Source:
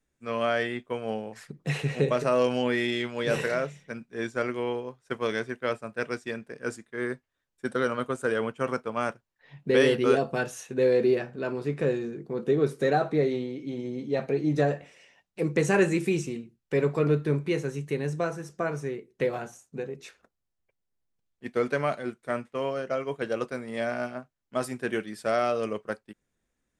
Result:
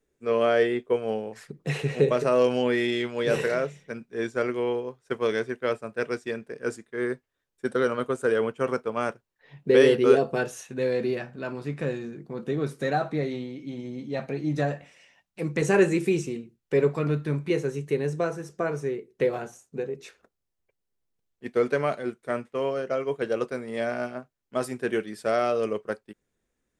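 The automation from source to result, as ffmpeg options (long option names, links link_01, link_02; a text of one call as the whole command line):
ffmpeg -i in.wav -af "asetnsamples=nb_out_samples=441:pad=0,asendcmd='0.96 equalizer g 5.5;10.61 equalizer g -6.5;15.62 equalizer g 4;16.93 equalizer g -6;17.5 equalizer g 5',equalizer=frequency=420:width_type=o:width=0.62:gain=14" out.wav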